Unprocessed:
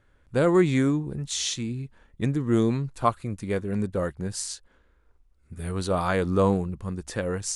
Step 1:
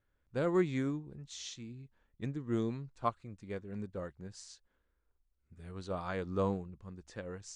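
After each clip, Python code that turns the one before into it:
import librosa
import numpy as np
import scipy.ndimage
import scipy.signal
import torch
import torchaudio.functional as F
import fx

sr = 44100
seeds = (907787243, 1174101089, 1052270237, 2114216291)

y = scipy.signal.sosfilt(scipy.signal.butter(4, 7200.0, 'lowpass', fs=sr, output='sos'), x)
y = fx.upward_expand(y, sr, threshold_db=-30.0, expansion=1.5)
y = F.gain(torch.from_numpy(y), -9.0).numpy()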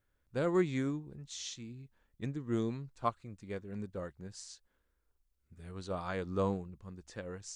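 y = fx.high_shelf(x, sr, hz=5000.0, db=4.5)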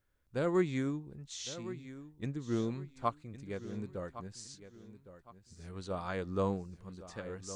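y = fx.echo_feedback(x, sr, ms=1111, feedback_pct=32, wet_db=-14)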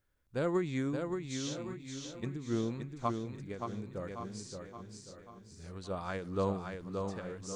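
y = fx.echo_feedback(x, sr, ms=574, feedback_pct=34, wet_db=-5.0)
y = fx.end_taper(y, sr, db_per_s=110.0)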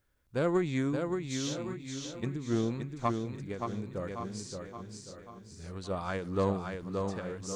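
y = fx.diode_clip(x, sr, knee_db=-22.0)
y = F.gain(torch.from_numpy(y), 4.0).numpy()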